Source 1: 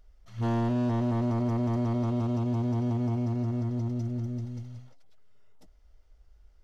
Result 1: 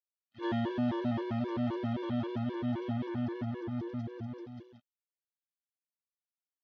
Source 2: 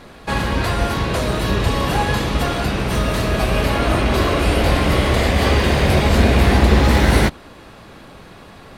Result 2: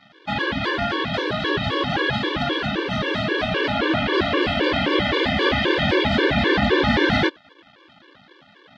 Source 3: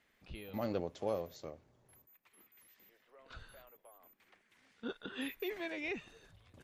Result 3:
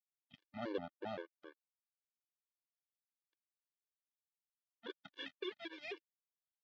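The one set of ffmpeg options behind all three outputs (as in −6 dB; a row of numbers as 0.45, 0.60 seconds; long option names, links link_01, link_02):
-af "aeval=exprs='sgn(val(0))*max(abs(val(0))-0.00944,0)':channel_layout=same,highpass=150,equalizer=frequency=330:width_type=q:width=4:gain=6,equalizer=frequency=1700:width_type=q:width=4:gain=7,equalizer=frequency=3300:width_type=q:width=4:gain=8,lowpass=frequency=4600:width=0.5412,lowpass=frequency=4600:width=1.3066,afftfilt=real='re*gt(sin(2*PI*3.8*pts/sr)*(1-2*mod(floor(b*sr/1024/300),2)),0)':imag='im*gt(sin(2*PI*3.8*pts/sr)*(1-2*mod(floor(b*sr/1024/300),2)),0)':win_size=1024:overlap=0.75"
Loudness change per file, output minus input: −6.0, −3.5, −6.0 LU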